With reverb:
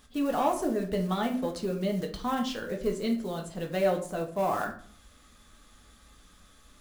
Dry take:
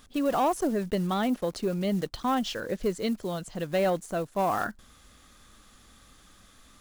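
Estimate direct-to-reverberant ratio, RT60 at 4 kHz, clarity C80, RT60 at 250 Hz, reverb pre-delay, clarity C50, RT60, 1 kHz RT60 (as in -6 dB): 1.5 dB, 0.35 s, 14.5 dB, 0.65 s, 4 ms, 10.0 dB, 0.50 s, 0.45 s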